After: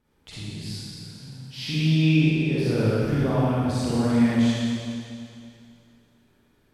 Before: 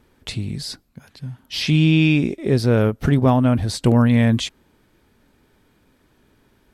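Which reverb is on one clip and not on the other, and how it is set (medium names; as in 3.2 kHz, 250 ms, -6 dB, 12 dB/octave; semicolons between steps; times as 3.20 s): Schroeder reverb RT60 2.5 s, DRR -10 dB; trim -15.5 dB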